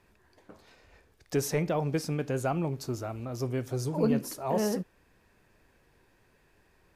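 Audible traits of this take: noise floor -66 dBFS; spectral tilt -6.0 dB/oct

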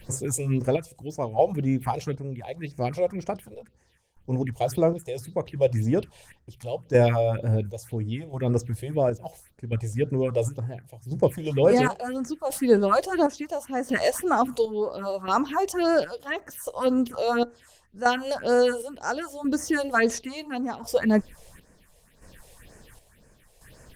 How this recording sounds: phasing stages 4, 1.9 Hz, lowest notch 220–3500 Hz; chopped level 0.72 Hz, depth 60%, duty 55%; Opus

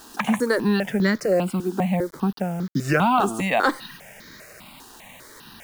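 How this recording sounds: a quantiser's noise floor 8-bit, dither none; notches that jump at a steady rate 5 Hz 580–2700 Hz

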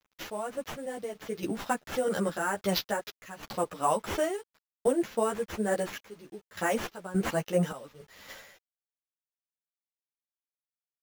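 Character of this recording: aliases and images of a low sample rate 8900 Hz, jitter 0%; random-step tremolo, depth 90%; a quantiser's noise floor 10-bit, dither none; a shimmering, thickened sound

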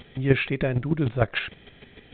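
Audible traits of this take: chopped level 6.6 Hz, depth 60%, duty 15%; µ-law

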